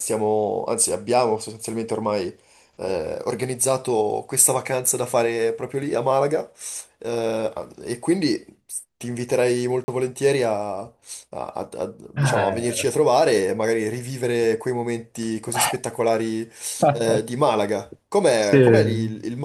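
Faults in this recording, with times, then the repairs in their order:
9.84–9.88 gap 40 ms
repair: interpolate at 9.84, 40 ms

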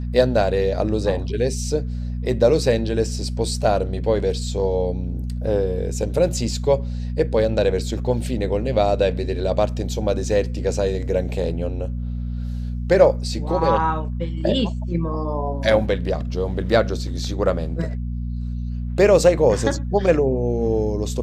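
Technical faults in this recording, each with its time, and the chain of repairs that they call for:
hum 60 Hz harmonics 4 -26 dBFS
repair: de-hum 60 Hz, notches 4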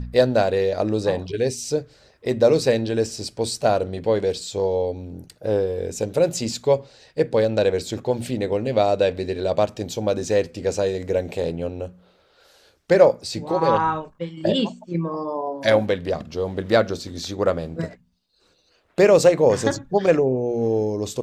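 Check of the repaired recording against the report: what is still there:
none

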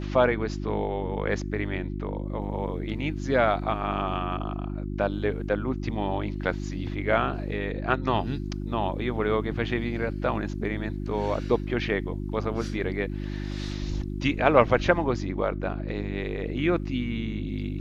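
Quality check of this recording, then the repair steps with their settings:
hum 50 Hz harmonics 7 -32 dBFS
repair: de-hum 50 Hz, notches 7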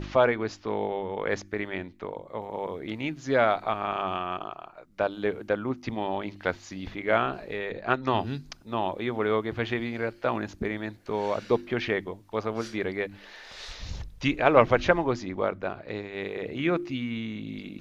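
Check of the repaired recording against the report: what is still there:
none

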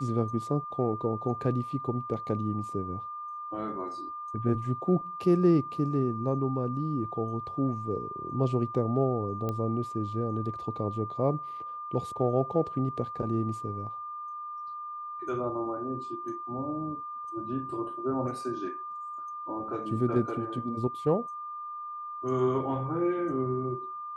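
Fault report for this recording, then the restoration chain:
tone 1200 Hz -36 dBFS
9.49 pop -20 dBFS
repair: de-click; notch 1200 Hz, Q 30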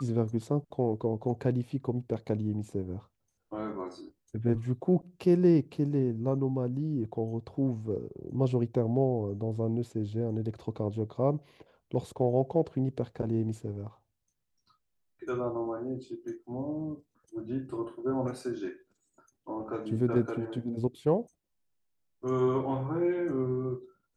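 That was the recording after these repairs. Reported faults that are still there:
none

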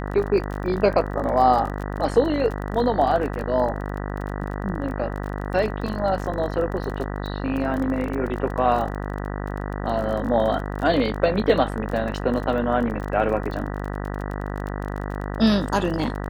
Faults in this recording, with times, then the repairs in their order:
buzz 50 Hz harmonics 39 -29 dBFS
crackle 32/s -29 dBFS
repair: de-click; de-hum 50 Hz, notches 39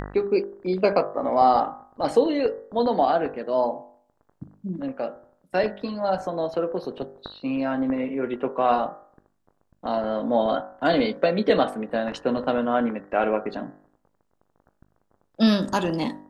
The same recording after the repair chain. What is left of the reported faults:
none

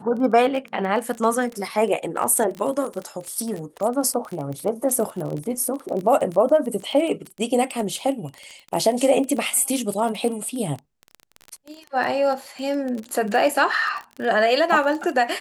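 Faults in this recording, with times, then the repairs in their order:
crackle 23/s -27 dBFS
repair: de-click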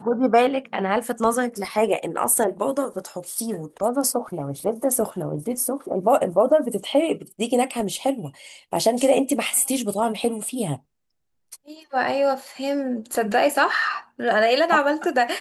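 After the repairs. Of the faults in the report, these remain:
none

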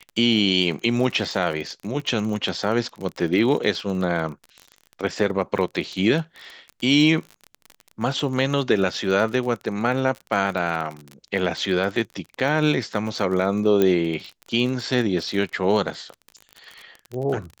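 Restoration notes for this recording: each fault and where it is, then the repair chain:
crackle 33/s -29 dBFS
13.82 pop -8 dBFS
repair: de-click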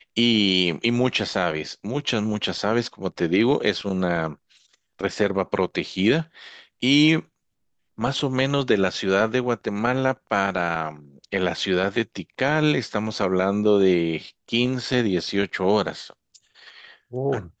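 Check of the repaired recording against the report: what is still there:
none

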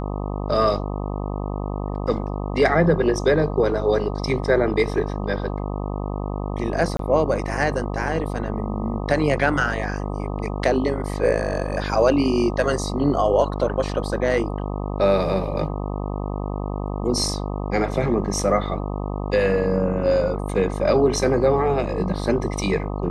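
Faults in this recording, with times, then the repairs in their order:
buzz 50 Hz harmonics 25 -27 dBFS
6.97–6.99 gap 23 ms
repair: de-hum 50 Hz, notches 25; interpolate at 6.97, 23 ms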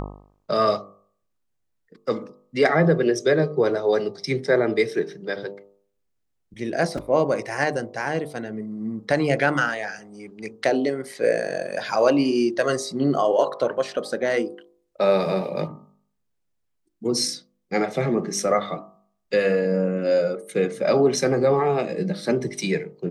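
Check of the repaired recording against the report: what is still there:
none

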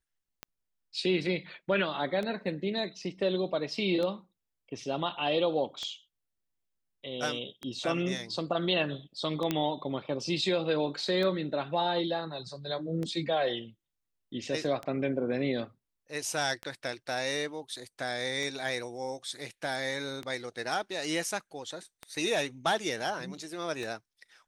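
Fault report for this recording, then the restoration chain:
tick 33 1/3 rpm -22 dBFS
9.51 pop -14 dBFS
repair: de-click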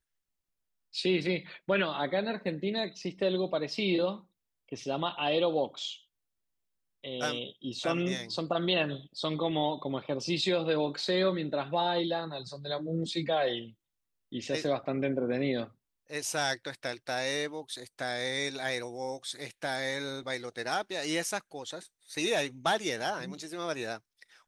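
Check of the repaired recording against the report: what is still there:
none

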